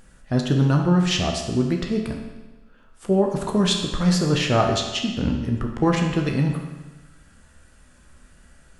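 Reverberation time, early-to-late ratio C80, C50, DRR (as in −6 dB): 1.2 s, 6.5 dB, 5.0 dB, 1.5 dB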